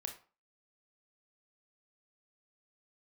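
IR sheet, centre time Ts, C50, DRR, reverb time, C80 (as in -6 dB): 15 ms, 10.0 dB, 3.5 dB, 0.40 s, 15.5 dB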